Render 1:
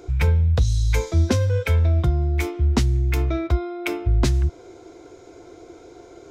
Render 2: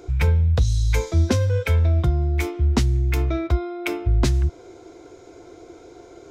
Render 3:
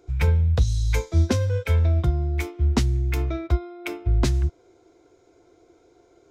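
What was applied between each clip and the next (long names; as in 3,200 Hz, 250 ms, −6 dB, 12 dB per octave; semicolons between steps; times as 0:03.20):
no processing that can be heard
expander for the loud parts 1.5 to 1, over −39 dBFS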